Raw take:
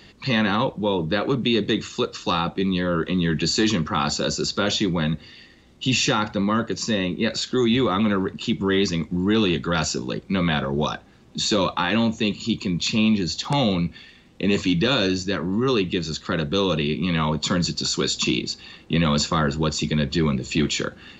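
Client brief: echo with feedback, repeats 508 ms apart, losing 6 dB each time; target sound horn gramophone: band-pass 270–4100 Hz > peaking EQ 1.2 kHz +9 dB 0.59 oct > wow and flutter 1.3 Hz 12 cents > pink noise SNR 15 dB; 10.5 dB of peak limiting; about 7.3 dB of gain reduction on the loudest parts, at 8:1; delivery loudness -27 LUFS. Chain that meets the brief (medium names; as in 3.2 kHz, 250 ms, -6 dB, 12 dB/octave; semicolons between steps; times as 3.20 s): compression 8:1, threshold -24 dBFS; peak limiter -25.5 dBFS; band-pass 270–4100 Hz; peaking EQ 1.2 kHz +9 dB 0.59 oct; feedback delay 508 ms, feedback 50%, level -6 dB; wow and flutter 1.3 Hz 12 cents; pink noise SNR 15 dB; trim +6.5 dB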